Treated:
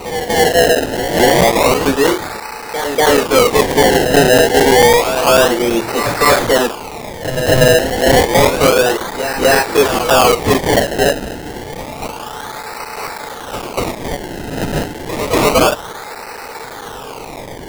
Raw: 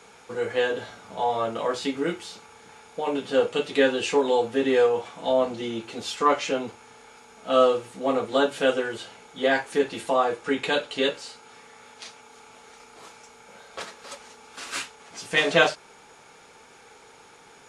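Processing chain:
Bessel high-pass filter 310 Hz, order 4
mid-hump overdrive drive 29 dB, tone 1,000 Hz, clips at −6.5 dBFS
sample-and-hold swept by an LFO 26×, swing 100% 0.29 Hz
backwards echo 241 ms −9 dB
regular buffer underruns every 0.11 s, samples 256, zero, from 0:00.53
level +6 dB

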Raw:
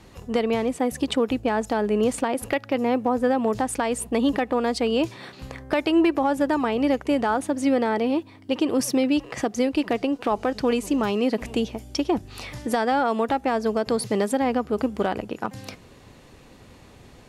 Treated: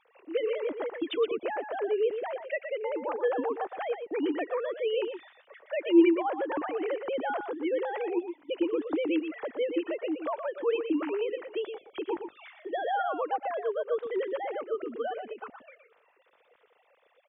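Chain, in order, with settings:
three sine waves on the formant tracks
on a send: single-tap delay 119 ms −8 dB
on the sum: level −7.5 dB

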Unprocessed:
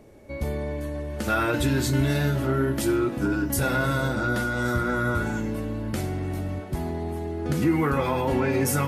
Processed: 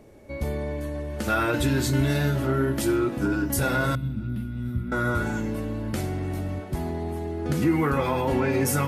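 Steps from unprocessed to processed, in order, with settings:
0:03.95–0:04.92: drawn EQ curve 220 Hz 0 dB, 510 Hz −26 dB, 1,700 Hz −23 dB, 2,600 Hz −11 dB, 6,800 Hz −30 dB, 11,000 Hz −14 dB

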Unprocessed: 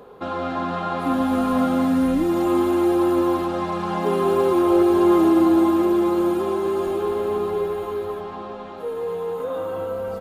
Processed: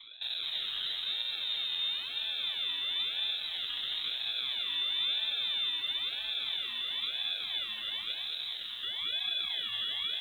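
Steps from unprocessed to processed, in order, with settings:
low-shelf EQ 160 Hz −3 dB
downward compressor 10 to 1, threshold −27 dBFS, peak gain reduction 14 dB
sample-and-hold swept by an LFO 38×, swing 60% 1 Hz
high-frequency loss of the air 330 metres
voice inversion scrambler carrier 3,900 Hz
feedback echo at a low word length 223 ms, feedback 35%, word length 9 bits, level −4 dB
level −5.5 dB

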